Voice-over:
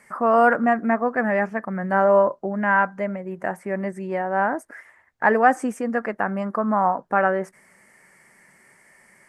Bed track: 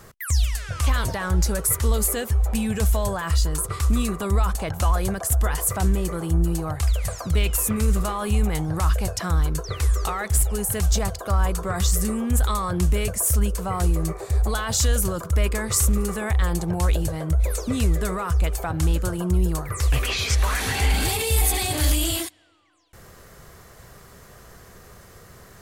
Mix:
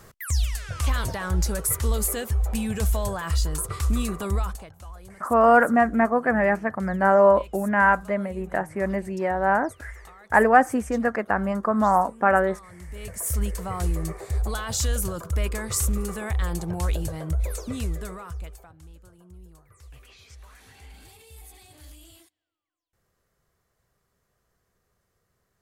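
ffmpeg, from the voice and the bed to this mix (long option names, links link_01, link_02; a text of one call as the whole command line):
ffmpeg -i stem1.wav -i stem2.wav -filter_complex "[0:a]adelay=5100,volume=0.5dB[link_01];[1:a]volume=14dB,afade=type=out:start_time=4.29:duration=0.42:silence=0.11885,afade=type=in:start_time=12.88:duration=0.54:silence=0.141254,afade=type=out:start_time=17.37:duration=1.38:silence=0.0749894[link_02];[link_01][link_02]amix=inputs=2:normalize=0" out.wav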